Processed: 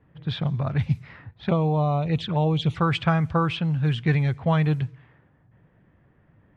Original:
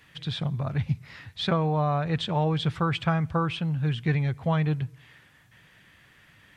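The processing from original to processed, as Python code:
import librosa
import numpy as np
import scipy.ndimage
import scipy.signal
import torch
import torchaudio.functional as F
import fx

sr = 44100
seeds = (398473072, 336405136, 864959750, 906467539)

y = fx.env_flanger(x, sr, rest_ms=8.6, full_db=-23.0, at=(1.31, 2.77))
y = fx.env_lowpass(y, sr, base_hz=600.0, full_db=-21.5)
y = y * librosa.db_to_amplitude(3.5)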